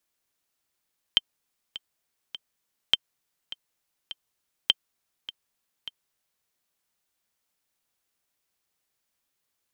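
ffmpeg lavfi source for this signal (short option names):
-f lavfi -i "aevalsrc='pow(10,(-5-17*gte(mod(t,3*60/102),60/102))/20)*sin(2*PI*3130*mod(t,60/102))*exp(-6.91*mod(t,60/102)/0.03)':d=5.29:s=44100"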